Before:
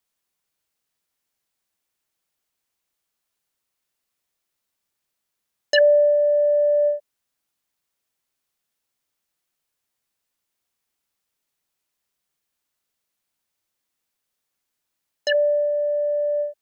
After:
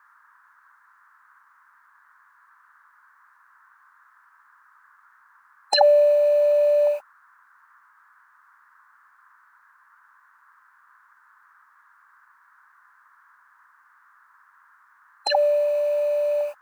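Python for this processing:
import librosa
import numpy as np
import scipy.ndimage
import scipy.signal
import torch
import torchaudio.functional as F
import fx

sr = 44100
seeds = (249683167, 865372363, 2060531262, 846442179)

y = fx.formant_shift(x, sr, semitones=6)
y = fx.dmg_noise_band(y, sr, seeds[0], low_hz=980.0, high_hz=1700.0, level_db=-57.0)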